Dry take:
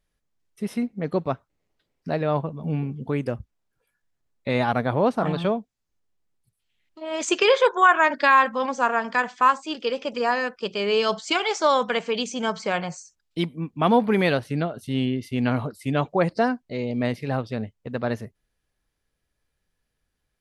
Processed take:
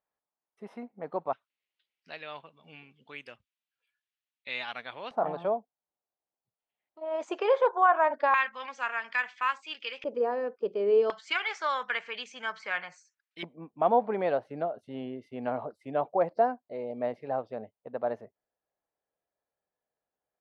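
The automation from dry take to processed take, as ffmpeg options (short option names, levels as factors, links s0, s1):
-af "asetnsamples=n=441:p=0,asendcmd='1.33 bandpass f 2900;5.11 bandpass f 730;8.34 bandpass f 2300;10.04 bandpass f 440;11.1 bandpass f 1800;13.43 bandpass f 680',bandpass=f=840:t=q:w=2.2:csg=0"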